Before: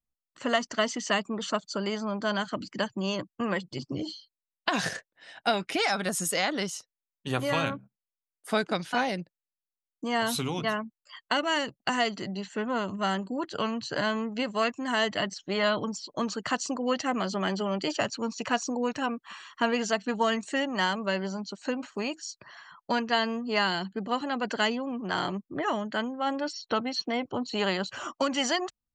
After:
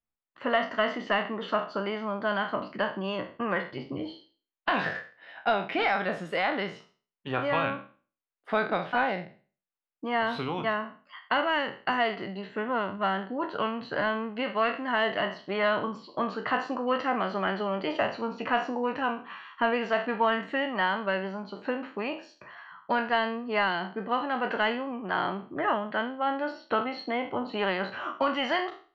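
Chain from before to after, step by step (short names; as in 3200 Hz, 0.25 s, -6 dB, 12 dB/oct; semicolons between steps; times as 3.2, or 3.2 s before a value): spectral trails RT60 0.39 s; high shelf 8900 Hz -9 dB; overdrive pedal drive 9 dB, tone 4800 Hz, clips at -9 dBFS; air absorption 410 m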